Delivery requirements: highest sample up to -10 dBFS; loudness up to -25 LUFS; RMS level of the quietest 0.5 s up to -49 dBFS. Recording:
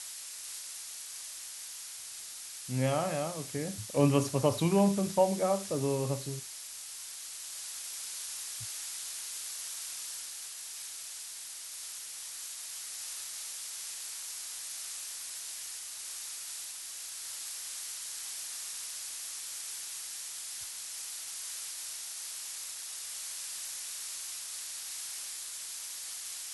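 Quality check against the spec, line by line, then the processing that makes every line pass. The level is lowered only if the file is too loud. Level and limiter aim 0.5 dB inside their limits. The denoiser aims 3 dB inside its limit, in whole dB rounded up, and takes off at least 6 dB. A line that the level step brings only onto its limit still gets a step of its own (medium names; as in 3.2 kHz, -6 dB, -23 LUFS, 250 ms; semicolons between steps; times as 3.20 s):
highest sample -12.0 dBFS: pass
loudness -35.5 LUFS: pass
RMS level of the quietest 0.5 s -44 dBFS: fail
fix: noise reduction 8 dB, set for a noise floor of -44 dBFS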